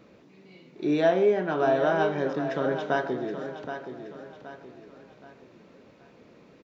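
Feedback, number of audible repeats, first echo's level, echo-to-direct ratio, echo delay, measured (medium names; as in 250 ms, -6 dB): 40%, 4, -9.5 dB, -8.5 dB, 773 ms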